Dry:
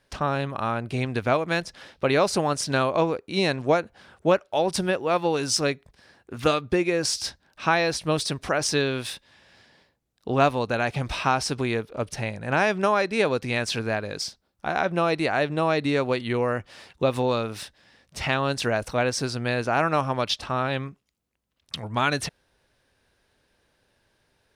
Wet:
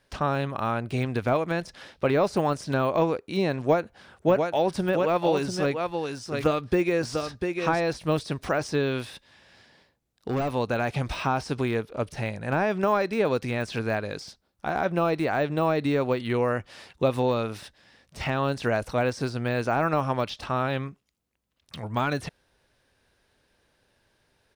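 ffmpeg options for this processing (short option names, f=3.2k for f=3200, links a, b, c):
-filter_complex "[0:a]asplit=3[a][b][c];[a]afade=t=out:st=4.27:d=0.02[d];[b]aecho=1:1:695:0.501,afade=t=in:st=4.27:d=0.02,afade=t=out:st=7.79:d=0.02[e];[c]afade=t=in:st=7.79:d=0.02[f];[d][e][f]amix=inputs=3:normalize=0,asettb=1/sr,asplit=3[g][h][i];[g]atrim=end=8.994[j];[h]atrim=start=8.99:end=10.53,asetpts=PTS-STARTPTS,afade=t=in:d=0.004:c=qsin,afade=t=out:st=1.536:d=0.004:c=qsin,asoftclip=type=hard:threshold=-23dB[k];[i]atrim=start=10.526[l];[j][k]acrossfade=d=0.004:c1=hsin:c2=qsin[m];[m][l]acrossfade=d=0.004:c1=qsin:c2=hsin,deesser=1"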